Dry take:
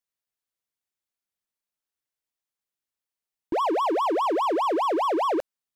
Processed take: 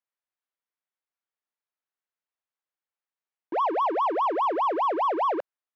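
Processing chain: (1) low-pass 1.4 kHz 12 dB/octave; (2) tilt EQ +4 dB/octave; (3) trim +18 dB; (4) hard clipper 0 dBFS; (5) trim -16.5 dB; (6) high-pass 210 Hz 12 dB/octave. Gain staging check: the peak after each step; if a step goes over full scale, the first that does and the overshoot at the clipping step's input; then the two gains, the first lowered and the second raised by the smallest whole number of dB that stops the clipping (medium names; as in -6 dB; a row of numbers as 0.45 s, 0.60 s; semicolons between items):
-19.5 dBFS, -21.0 dBFS, -3.0 dBFS, -3.0 dBFS, -19.5 dBFS, -20.0 dBFS; nothing clips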